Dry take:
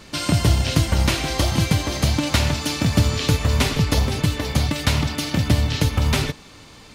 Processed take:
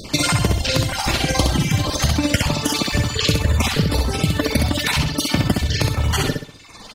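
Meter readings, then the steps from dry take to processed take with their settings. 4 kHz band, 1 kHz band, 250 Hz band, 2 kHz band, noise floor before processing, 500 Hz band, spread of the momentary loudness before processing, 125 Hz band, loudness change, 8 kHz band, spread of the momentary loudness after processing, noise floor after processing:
+3.0 dB, +3.0 dB, +1.5 dB, +3.0 dB, -45 dBFS, +2.5 dB, 3 LU, -0.5 dB, +1.5 dB, +3.5 dB, 2 LU, -41 dBFS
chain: random holes in the spectrogram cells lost 28%; reverb removal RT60 1.4 s; in parallel at +3 dB: peak limiter -15.5 dBFS, peak gain reduction 10.5 dB; on the sum: compression, threshold -19 dBFS, peak gain reduction 11 dB; AM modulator 20 Hz, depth 40%; on a send: feedback delay 65 ms, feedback 37%, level -4 dB; on the sum: trim +5.5 dB

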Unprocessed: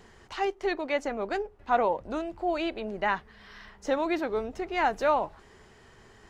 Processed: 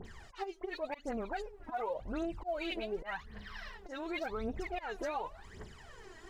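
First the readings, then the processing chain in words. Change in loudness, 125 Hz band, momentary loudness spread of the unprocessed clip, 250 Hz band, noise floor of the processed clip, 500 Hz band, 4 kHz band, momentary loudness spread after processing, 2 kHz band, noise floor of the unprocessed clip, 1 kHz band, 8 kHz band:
-10.5 dB, -1.5 dB, 9 LU, -8.0 dB, -55 dBFS, -10.0 dB, -6.0 dB, 14 LU, -9.5 dB, -56 dBFS, -12.0 dB, no reading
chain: phase dispersion highs, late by 55 ms, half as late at 2.5 kHz; slow attack 311 ms; compression 2:1, threshold -36 dBFS, peak gain reduction 9 dB; phaser 0.89 Hz, delay 3.2 ms, feedback 75%; peak limiter -26.5 dBFS, peak gain reduction 8.5 dB; trim -2 dB

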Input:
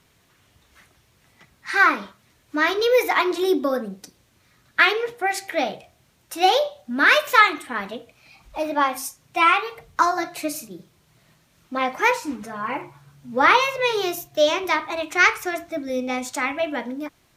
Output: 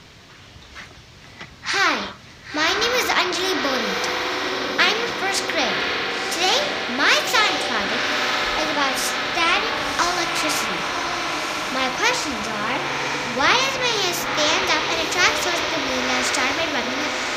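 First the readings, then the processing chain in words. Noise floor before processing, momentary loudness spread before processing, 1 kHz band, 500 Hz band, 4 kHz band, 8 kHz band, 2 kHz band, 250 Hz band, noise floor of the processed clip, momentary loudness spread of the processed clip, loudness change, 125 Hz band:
-61 dBFS, 14 LU, -0.5 dB, -1.5 dB, +8.5 dB, +9.5 dB, +1.5 dB, +0.5 dB, -44 dBFS, 6 LU, +1.0 dB, no reading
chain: resonant high shelf 7.4 kHz -13.5 dB, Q 1.5; echo that smears into a reverb 1036 ms, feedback 58%, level -10 dB; spectrum-flattening compressor 2:1; trim -1 dB

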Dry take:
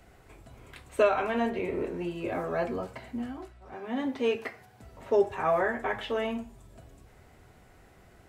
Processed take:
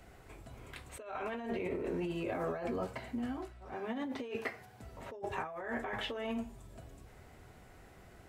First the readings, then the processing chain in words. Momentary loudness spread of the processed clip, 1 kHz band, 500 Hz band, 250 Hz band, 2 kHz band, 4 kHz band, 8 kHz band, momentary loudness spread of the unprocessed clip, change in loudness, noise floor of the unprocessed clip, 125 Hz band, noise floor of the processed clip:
20 LU, -9.5 dB, -11.0 dB, -5.5 dB, -7.5 dB, -4.0 dB, no reading, 18 LU, -9.5 dB, -57 dBFS, -3.0 dB, -57 dBFS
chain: compressor with a negative ratio -34 dBFS, ratio -1; trim -4.5 dB

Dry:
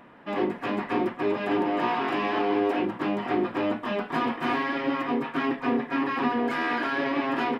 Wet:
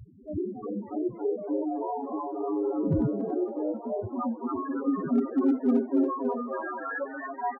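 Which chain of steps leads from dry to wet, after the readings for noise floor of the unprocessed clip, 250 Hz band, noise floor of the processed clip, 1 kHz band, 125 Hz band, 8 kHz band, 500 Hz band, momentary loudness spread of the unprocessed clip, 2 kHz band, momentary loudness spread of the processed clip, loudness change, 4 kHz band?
-43 dBFS, -0.5 dB, -43 dBFS, -7.0 dB, +3.5 dB, no reading, -2.0 dB, 3 LU, -12.0 dB, 9 LU, -2.5 dB, under -30 dB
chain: wind noise 510 Hz -30 dBFS; loudest bins only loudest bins 2; high-pass sweep 73 Hz -> 650 Hz, 3.34–7.29 s; hard clipper -18 dBFS, distortion -28 dB; frequency-shifting echo 281 ms, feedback 46%, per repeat +130 Hz, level -7.5 dB

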